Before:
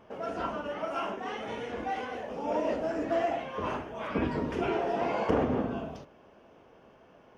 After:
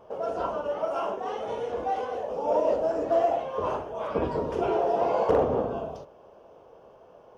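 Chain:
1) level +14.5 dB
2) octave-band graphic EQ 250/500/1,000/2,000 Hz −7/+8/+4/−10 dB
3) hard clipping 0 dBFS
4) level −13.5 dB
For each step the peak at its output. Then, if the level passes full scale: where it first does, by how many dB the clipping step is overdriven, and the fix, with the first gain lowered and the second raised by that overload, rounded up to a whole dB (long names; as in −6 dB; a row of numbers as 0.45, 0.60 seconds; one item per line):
+1.5, +4.5, 0.0, −13.5 dBFS
step 1, 4.5 dB
step 1 +9.5 dB, step 4 −8.5 dB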